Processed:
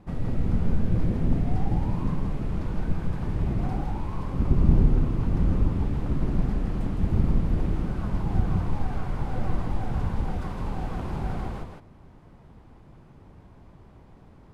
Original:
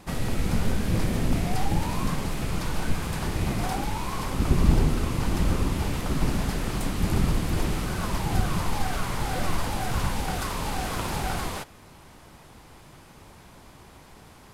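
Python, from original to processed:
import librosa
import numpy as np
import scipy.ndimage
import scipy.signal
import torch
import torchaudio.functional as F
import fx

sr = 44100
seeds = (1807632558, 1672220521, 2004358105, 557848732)

p1 = fx.lowpass(x, sr, hz=1100.0, slope=6)
p2 = fx.low_shelf(p1, sr, hz=370.0, db=8.0)
p3 = p2 + fx.echo_single(p2, sr, ms=162, db=-4.5, dry=0)
y = F.gain(torch.from_numpy(p3), -7.0).numpy()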